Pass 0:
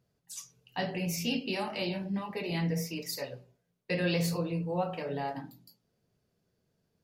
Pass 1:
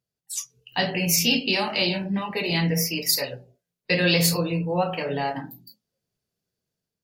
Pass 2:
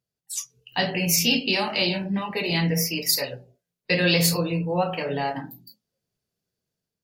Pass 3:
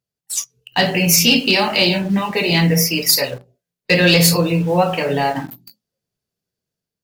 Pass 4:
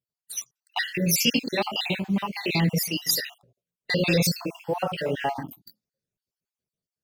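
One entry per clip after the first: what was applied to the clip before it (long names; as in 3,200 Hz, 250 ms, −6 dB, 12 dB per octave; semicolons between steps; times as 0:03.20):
noise reduction from a noise print of the clip's start 16 dB; high-shelf EQ 2,300 Hz +10.5 dB; automatic gain control gain up to 4.5 dB; level +2.5 dB
no processing that can be heard
leveller curve on the samples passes 1; in parallel at −9 dB: bit reduction 6 bits; on the sum: level +2 dB
time-frequency cells dropped at random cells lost 53%; level −6.5 dB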